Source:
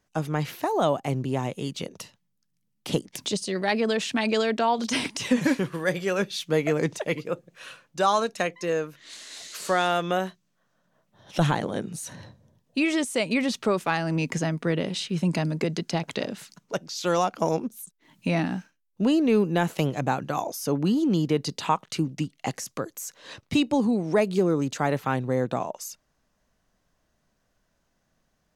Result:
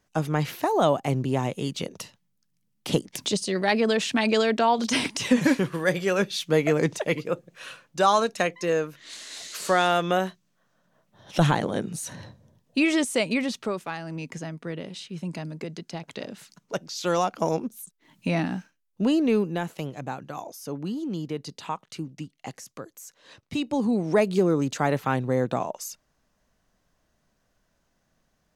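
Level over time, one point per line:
0:13.14 +2 dB
0:13.95 −8.5 dB
0:16.00 −8.5 dB
0:16.77 −0.5 dB
0:19.29 −0.5 dB
0:19.74 −8 dB
0:23.46 −8 dB
0:23.98 +1 dB

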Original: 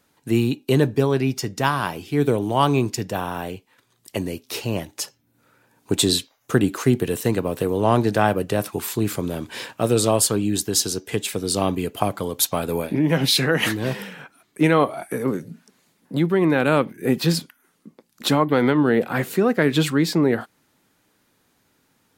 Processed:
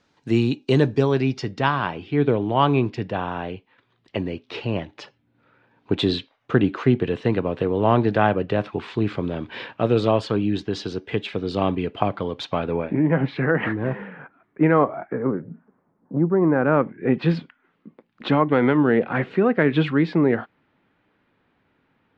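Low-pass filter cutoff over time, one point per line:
low-pass filter 24 dB per octave
0:01.02 5,800 Hz
0:01.84 3,400 Hz
0:12.54 3,400 Hz
0:13.10 1,900 Hz
0:14.87 1,900 Hz
0:16.20 1,100 Hz
0:17.28 2,900 Hz

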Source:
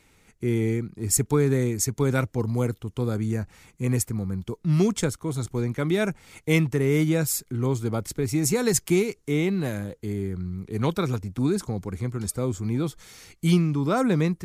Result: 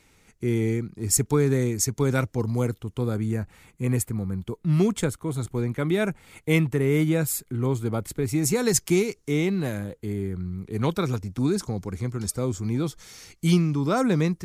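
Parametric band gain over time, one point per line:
parametric band 5,600 Hz 0.61 octaves
0:02.58 +2.5 dB
0:03.24 −7 dB
0:08.10 −7 dB
0:08.85 +4.5 dB
0:09.42 +4.5 dB
0:09.90 −5.5 dB
0:10.45 −5.5 dB
0:11.34 +4.5 dB

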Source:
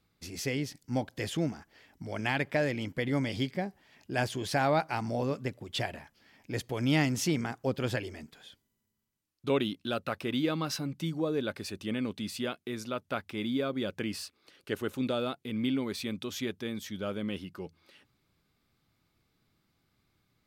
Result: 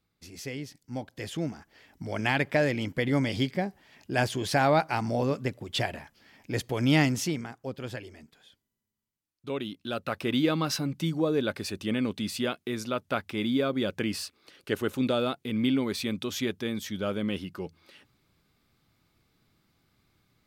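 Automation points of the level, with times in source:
0:00.98 −4.5 dB
0:02.06 +4 dB
0:07.06 +4 dB
0:07.50 −5.5 dB
0:09.54 −5.5 dB
0:10.28 +4.5 dB

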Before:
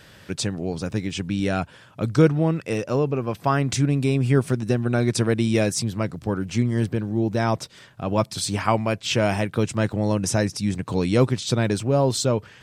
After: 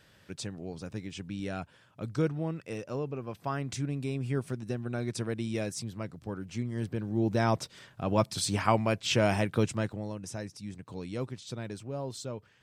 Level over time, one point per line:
0:06.71 −12.5 dB
0:07.28 −4.5 dB
0:09.64 −4.5 dB
0:10.14 −17 dB

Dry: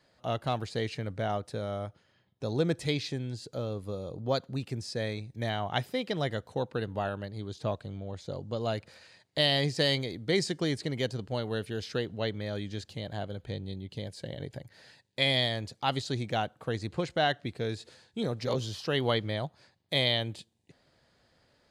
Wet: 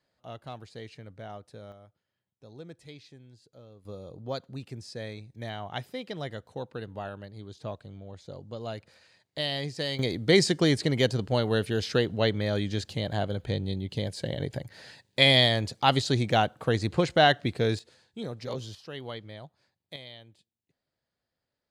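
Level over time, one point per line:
−10.5 dB
from 0:01.72 −17 dB
from 0:03.85 −5 dB
from 0:09.99 +7 dB
from 0:17.79 −4.5 dB
from 0:18.75 −11 dB
from 0:19.96 −19 dB

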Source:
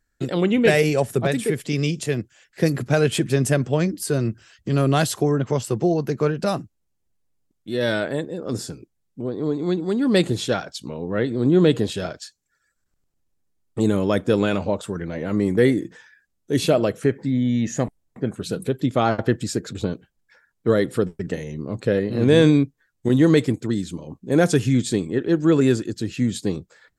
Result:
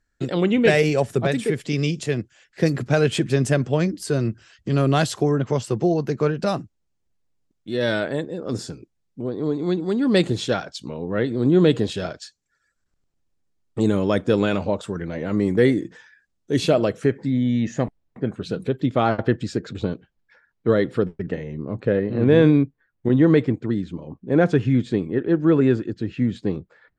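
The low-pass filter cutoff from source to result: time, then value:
0:17.28 7,100 Hz
0:17.74 4,000 Hz
0:20.75 4,000 Hz
0:21.50 2,300 Hz

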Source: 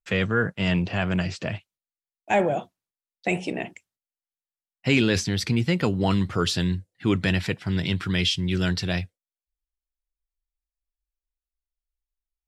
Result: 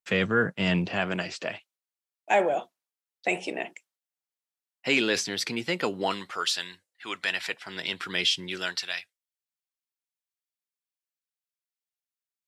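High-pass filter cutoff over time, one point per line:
0:00.78 160 Hz
0:01.33 390 Hz
0:06.00 390 Hz
0:06.44 970 Hz
0:07.13 970 Hz
0:08.39 370 Hz
0:08.96 1,400 Hz

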